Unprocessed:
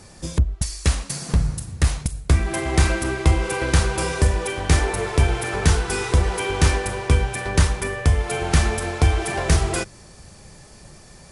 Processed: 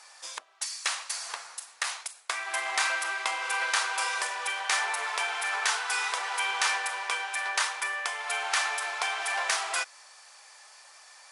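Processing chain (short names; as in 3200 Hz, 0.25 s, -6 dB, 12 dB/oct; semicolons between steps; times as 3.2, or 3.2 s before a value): HPF 850 Hz 24 dB/oct; high shelf 9700 Hz -11 dB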